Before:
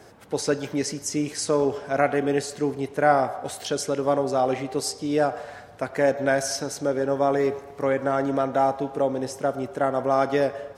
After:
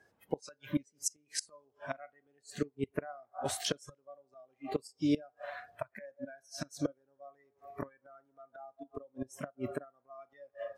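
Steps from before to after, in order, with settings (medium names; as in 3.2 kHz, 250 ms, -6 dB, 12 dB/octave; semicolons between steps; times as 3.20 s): inverted gate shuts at -17 dBFS, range -25 dB; spectral noise reduction 21 dB; trim -1.5 dB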